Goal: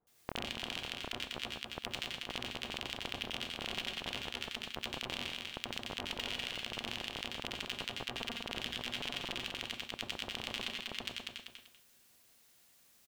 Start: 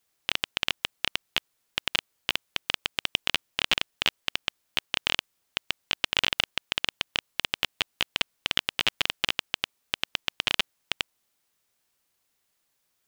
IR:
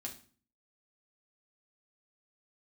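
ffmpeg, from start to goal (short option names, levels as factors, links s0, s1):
-filter_complex "[0:a]acrossover=split=1100[s0][s1];[s1]adelay=70[s2];[s0][s2]amix=inputs=2:normalize=0,alimiter=limit=0.211:level=0:latency=1,asplit=2[s3][s4];[s4]aecho=0:1:194|388|582:0.501|0.11|0.0243[s5];[s3][s5]amix=inputs=2:normalize=0,acompressor=threshold=0.00562:ratio=4,asplit=2[s6][s7];[1:a]atrim=start_sample=2205,adelay=87[s8];[s7][s8]afir=irnorm=-1:irlink=0,volume=1.26[s9];[s6][s9]amix=inputs=2:normalize=0,volume=2"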